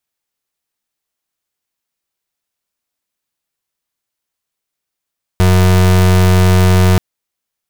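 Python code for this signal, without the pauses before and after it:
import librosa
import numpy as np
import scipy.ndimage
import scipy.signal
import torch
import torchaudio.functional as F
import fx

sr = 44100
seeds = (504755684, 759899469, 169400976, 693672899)

y = fx.pulse(sr, length_s=1.58, hz=92.1, level_db=-8.5, duty_pct=34)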